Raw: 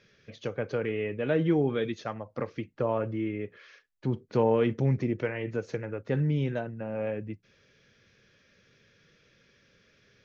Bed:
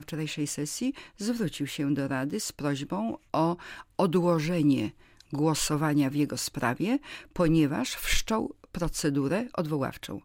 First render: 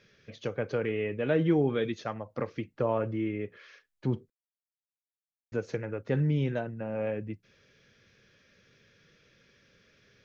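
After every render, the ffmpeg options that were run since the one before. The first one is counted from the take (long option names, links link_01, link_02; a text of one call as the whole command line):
ffmpeg -i in.wav -filter_complex "[0:a]asplit=3[link_01][link_02][link_03];[link_01]atrim=end=4.3,asetpts=PTS-STARTPTS,afade=type=out:start_time=4.296:duration=0.004:curve=hsin[link_04];[link_02]atrim=start=4.3:end=5.52,asetpts=PTS-STARTPTS,volume=0[link_05];[link_03]atrim=start=5.52,asetpts=PTS-STARTPTS,afade=type=in:duration=0.004:curve=hsin[link_06];[link_04][link_05][link_06]concat=n=3:v=0:a=1" out.wav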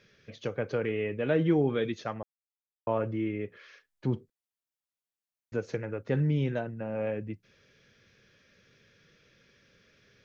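ffmpeg -i in.wav -filter_complex "[0:a]asplit=3[link_01][link_02][link_03];[link_01]atrim=end=2.23,asetpts=PTS-STARTPTS,afade=type=out:start_time=2.226:duration=0.004:curve=hsin[link_04];[link_02]atrim=start=2.23:end=2.87,asetpts=PTS-STARTPTS,volume=0[link_05];[link_03]atrim=start=2.87,asetpts=PTS-STARTPTS,afade=type=in:duration=0.004:curve=hsin[link_06];[link_04][link_05][link_06]concat=n=3:v=0:a=1" out.wav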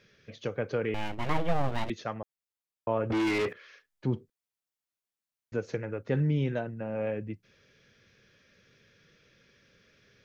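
ffmpeg -i in.wav -filter_complex "[0:a]asettb=1/sr,asplit=3[link_01][link_02][link_03];[link_01]atrim=end=0.944[link_04];[link_02]atrim=start=0.94:end=1.9,asetpts=PTS-STARTPTS,afade=type=in:duration=0.004:curve=qsin,afade=type=out:start_time=0.956:duration=0.004:curve=qsin,aeval=exprs='abs(val(0))':channel_layout=same[link_05];[link_03]atrim=start=1.896[link_06];[link_04][link_05]acrossfade=duration=0.004:curve1=hsin:curve2=qsin[link_07];[link_07][link_06]acrossfade=duration=0.004:curve1=qsin:curve2=hsin,asettb=1/sr,asplit=3[link_08][link_09][link_10];[link_08]atrim=end=3.104[link_11];[link_09]atrim=start=3.1:end=3.53,asetpts=PTS-STARTPTS,afade=type=in:duration=0.004:curve=qsin,afade=type=out:start_time=0.426:duration=0.004:curve=qsin,asplit=2[link_12][link_13];[link_13]highpass=frequency=720:poles=1,volume=32dB,asoftclip=type=tanh:threshold=-21dB[link_14];[link_12][link_14]amix=inputs=2:normalize=0,lowpass=frequency=4000:poles=1,volume=-6dB[link_15];[link_10]atrim=start=3.526[link_16];[link_11][link_15]acrossfade=duration=0.004:curve1=hsin:curve2=qsin[link_17];[link_17][link_16]acrossfade=duration=0.004:curve1=qsin:curve2=hsin" out.wav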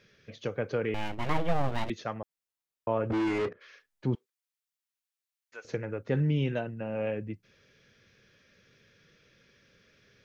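ffmpeg -i in.wav -filter_complex "[0:a]asplit=3[link_01][link_02][link_03];[link_01]afade=type=out:start_time=3.11:duration=0.02[link_04];[link_02]adynamicsmooth=sensitivity=2:basefreq=890,afade=type=in:start_time=3.11:duration=0.02,afade=type=out:start_time=3.6:duration=0.02[link_05];[link_03]afade=type=in:start_time=3.6:duration=0.02[link_06];[link_04][link_05][link_06]amix=inputs=3:normalize=0,asettb=1/sr,asplit=3[link_07][link_08][link_09];[link_07]atrim=end=4.154[link_10];[link_08]atrim=start=4.15:end=5.65,asetpts=PTS-STARTPTS,afade=type=in:duration=0.004:curve=qsin,afade=type=out:start_time=1.496:duration=0.004:curve=qsin,highpass=1200[link_11];[link_09]atrim=start=5.646[link_12];[link_10][link_11]acrossfade=duration=0.004:curve1=hsin:curve2=qsin[link_13];[link_13][link_12]acrossfade=duration=0.004:curve1=qsin:curve2=hsin,asettb=1/sr,asplit=3[link_14][link_15][link_16];[link_14]atrim=end=6.234[link_17];[link_15]atrim=start=6.23:end=7.15,asetpts=PTS-STARTPTS,afade=type=in:duration=0.004:curve=qsin,afade=type=out:start_time=0.916:duration=0.004:curve=qsin,equalizer=frequency=2800:width=6:gain=9[link_18];[link_16]atrim=start=7.146[link_19];[link_17][link_18]acrossfade=duration=0.004:curve1=hsin:curve2=qsin[link_20];[link_20][link_19]acrossfade=duration=0.004:curve1=qsin:curve2=hsin" out.wav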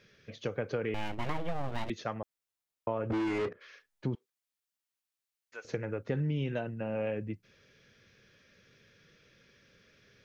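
ffmpeg -i in.wav -af "acompressor=threshold=-28dB:ratio=10" out.wav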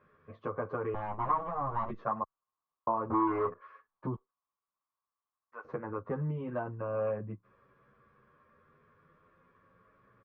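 ffmpeg -i in.wav -filter_complex "[0:a]lowpass=frequency=1100:width_type=q:width=11,asplit=2[link_01][link_02];[link_02]adelay=9.7,afreqshift=0.34[link_03];[link_01][link_03]amix=inputs=2:normalize=1" out.wav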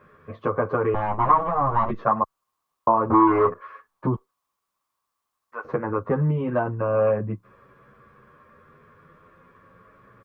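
ffmpeg -i in.wav -af "volume=12dB" out.wav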